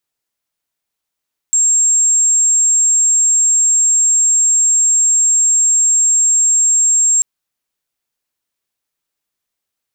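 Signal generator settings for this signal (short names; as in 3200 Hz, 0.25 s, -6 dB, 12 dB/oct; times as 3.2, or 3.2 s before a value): tone sine 7480 Hz -9 dBFS 5.69 s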